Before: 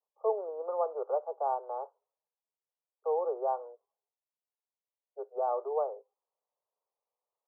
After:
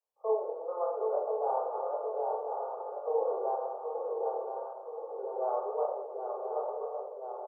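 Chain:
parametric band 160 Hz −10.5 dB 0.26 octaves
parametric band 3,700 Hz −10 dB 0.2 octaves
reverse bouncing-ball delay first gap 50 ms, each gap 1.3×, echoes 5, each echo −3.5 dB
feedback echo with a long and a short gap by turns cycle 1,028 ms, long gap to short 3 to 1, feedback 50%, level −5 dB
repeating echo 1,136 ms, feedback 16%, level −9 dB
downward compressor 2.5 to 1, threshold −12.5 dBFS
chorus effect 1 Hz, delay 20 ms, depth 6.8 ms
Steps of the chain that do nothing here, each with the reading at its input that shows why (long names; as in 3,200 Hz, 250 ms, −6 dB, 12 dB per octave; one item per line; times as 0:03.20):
parametric band 160 Hz: nothing at its input below 340 Hz
parametric band 3,700 Hz: nothing at its input above 1,300 Hz
downward compressor, threshold −12.5 dBFS: peak of its input −15.5 dBFS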